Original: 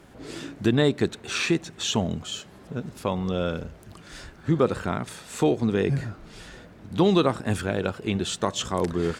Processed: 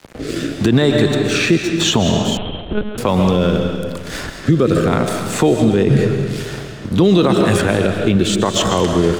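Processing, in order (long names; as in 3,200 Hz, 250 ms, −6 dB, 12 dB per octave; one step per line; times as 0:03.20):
dead-zone distortion −46.5 dBFS
rotating-speaker cabinet horn 0.9 Hz
convolution reverb RT60 1.4 s, pre-delay 90 ms, DRR 6.5 dB
0:02.37–0:02.98: one-pitch LPC vocoder at 8 kHz 210 Hz
boost into a limiter +17.5 dB
multiband upward and downward compressor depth 40%
level −2.5 dB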